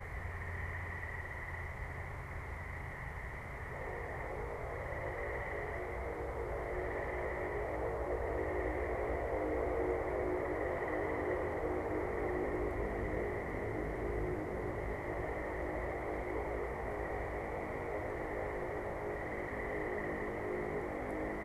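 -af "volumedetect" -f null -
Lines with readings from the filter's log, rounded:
mean_volume: -38.6 dB
max_volume: -24.1 dB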